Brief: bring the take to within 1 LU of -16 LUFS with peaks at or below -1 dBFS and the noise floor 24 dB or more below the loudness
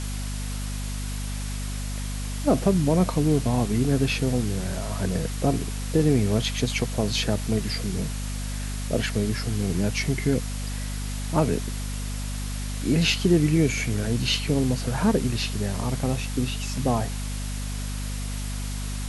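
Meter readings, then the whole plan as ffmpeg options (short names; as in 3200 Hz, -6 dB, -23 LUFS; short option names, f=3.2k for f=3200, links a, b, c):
hum 50 Hz; harmonics up to 250 Hz; hum level -28 dBFS; noise floor -30 dBFS; noise floor target -50 dBFS; loudness -26.0 LUFS; peak -7.5 dBFS; loudness target -16.0 LUFS
-> -af "bandreject=f=50:t=h:w=6,bandreject=f=100:t=h:w=6,bandreject=f=150:t=h:w=6,bandreject=f=200:t=h:w=6,bandreject=f=250:t=h:w=6"
-af "afftdn=nr=20:nf=-30"
-af "volume=10dB,alimiter=limit=-1dB:level=0:latency=1"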